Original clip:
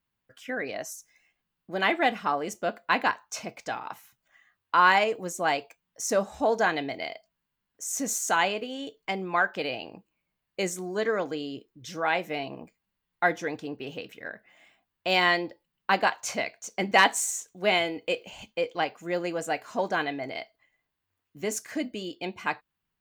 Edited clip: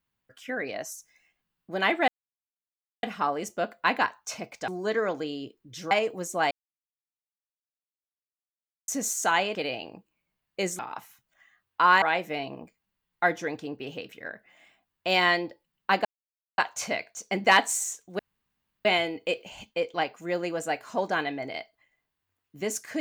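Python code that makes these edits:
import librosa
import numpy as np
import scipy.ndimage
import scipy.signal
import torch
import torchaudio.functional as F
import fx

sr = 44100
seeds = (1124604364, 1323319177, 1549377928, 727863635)

y = fx.edit(x, sr, fx.insert_silence(at_s=2.08, length_s=0.95),
    fx.swap(start_s=3.73, length_s=1.23, other_s=10.79, other_length_s=1.23),
    fx.silence(start_s=5.56, length_s=2.37),
    fx.cut(start_s=8.6, length_s=0.95),
    fx.insert_silence(at_s=16.05, length_s=0.53),
    fx.insert_room_tone(at_s=17.66, length_s=0.66), tone=tone)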